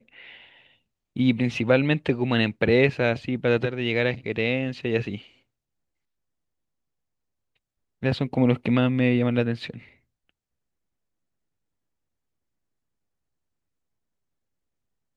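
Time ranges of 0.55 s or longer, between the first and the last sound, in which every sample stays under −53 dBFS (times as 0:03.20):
0:05.38–0:08.02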